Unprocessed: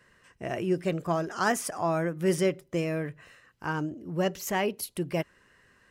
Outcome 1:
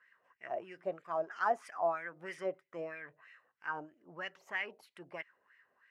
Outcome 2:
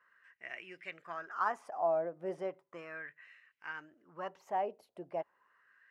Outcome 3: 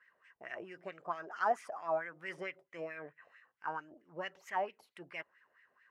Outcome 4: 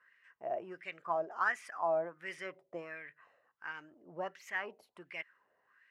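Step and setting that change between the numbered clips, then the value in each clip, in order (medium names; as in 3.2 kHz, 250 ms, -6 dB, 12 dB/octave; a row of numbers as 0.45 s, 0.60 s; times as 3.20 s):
wah-wah, rate: 3.1 Hz, 0.36 Hz, 4.5 Hz, 1.4 Hz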